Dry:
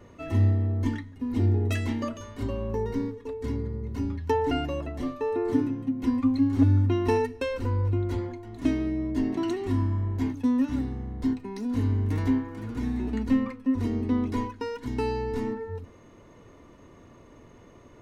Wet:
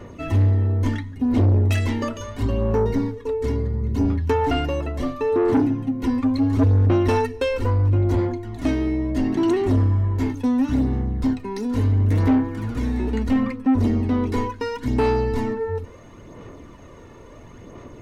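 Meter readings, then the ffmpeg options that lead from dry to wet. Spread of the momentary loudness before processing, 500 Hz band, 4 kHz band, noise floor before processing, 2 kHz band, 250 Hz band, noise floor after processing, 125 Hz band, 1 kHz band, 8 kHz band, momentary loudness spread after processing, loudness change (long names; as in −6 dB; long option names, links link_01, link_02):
9 LU, +7.0 dB, +6.5 dB, −52 dBFS, +6.5 dB, +5.0 dB, −43 dBFS, +7.0 dB, +6.5 dB, can't be measured, 8 LU, +6.0 dB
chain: -af "aphaser=in_gain=1:out_gain=1:delay=2.3:decay=0.39:speed=0.73:type=sinusoidal,asoftclip=type=tanh:threshold=-20.5dB,volume=7.5dB"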